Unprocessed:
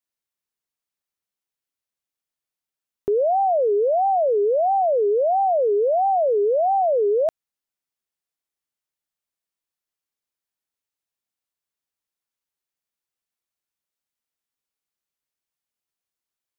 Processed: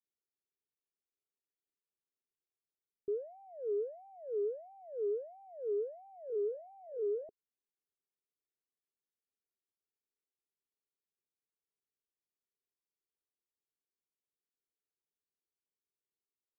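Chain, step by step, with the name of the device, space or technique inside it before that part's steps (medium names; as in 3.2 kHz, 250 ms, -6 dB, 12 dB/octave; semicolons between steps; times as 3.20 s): 6.27–7.24 s: doubling 24 ms -12 dB; overdriven synthesiser ladder filter (saturation -32.5 dBFS, distortion -8 dB; four-pole ladder low-pass 460 Hz, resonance 65%)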